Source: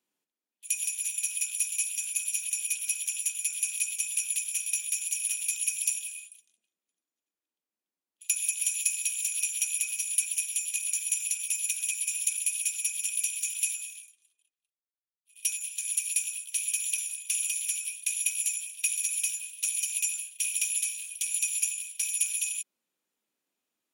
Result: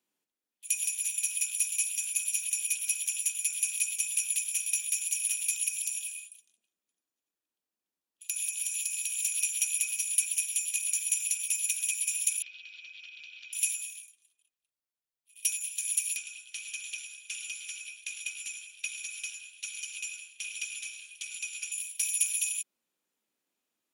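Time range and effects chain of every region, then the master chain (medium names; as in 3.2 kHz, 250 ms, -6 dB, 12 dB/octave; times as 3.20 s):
5.68–9.18 s: band-stop 2.1 kHz, Q 19 + compression 5:1, threshold -28 dBFS
12.42–13.53 s: steep low-pass 4.5 kHz 48 dB/octave + compression 10:1, threshold -43 dBFS
16.16–21.72 s: distance through air 95 m + delay 107 ms -11 dB
whole clip: none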